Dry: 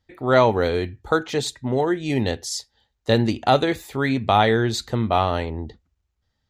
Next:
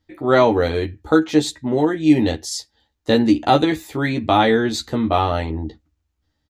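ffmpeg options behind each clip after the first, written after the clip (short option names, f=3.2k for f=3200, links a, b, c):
-filter_complex "[0:a]equalizer=f=300:t=o:w=0.22:g=14,asplit=2[a][b];[b]adelay=13,volume=-4dB[c];[a][c]amix=inputs=2:normalize=0"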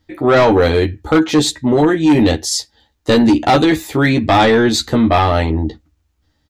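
-af "acontrast=71,asoftclip=type=hard:threshold=-2.5dB,apsyclip=8.5dB,volume=-6.5dB"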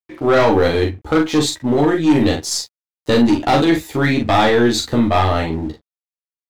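-filter_complex "[0:a]aeval=exprs='sgn(val(0))*max(abs(val(0))-0.00891,0)':c=same,aeval=exprs='0.501*(cos(1*acos(clip(val(0)/0.501,-1,1)))-cos(1*PI/2))+0.0224*(cos(4*acos(clip(val(0)/0.501,-1,1)))-cos(4*PI/2))':c=same,asplit=2[a][b];[b]adelay=42,volume=-5dB[c];[a][c]amix=inputs=2:normalize=0,volume=-3.5dB"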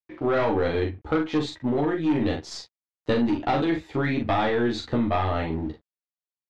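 -af "lowpass=3.2k,alimiter=limit=-10dB:level=0:latency=1:release=249,volume=-6dB"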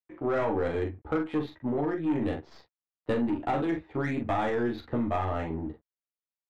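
-filter_complex "[0:a]bass=f=250:g=-1,treble=f=4k:g=-12,acrossover=split=390|1300[a][b][c];[c]adynamicsmooth=sensitivity=6:basefreq=2.7k[d];[a][b][d]amix=inputs=3:normalize=0,volume=-4.5dB"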